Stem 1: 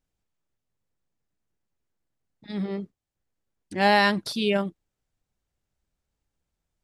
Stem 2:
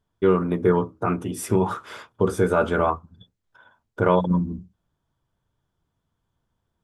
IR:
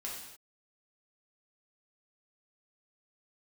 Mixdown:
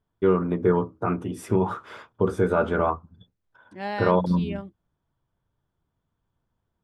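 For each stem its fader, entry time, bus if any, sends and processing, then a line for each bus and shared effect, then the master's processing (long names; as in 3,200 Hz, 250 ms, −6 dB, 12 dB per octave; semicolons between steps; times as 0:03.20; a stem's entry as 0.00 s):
−11.0 dB, 0.00 s, no send, no processing
−1.5 dB, 0.00 s, no send, no processing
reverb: not used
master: high-shelf EQ 4,200 Hz −11.5 dB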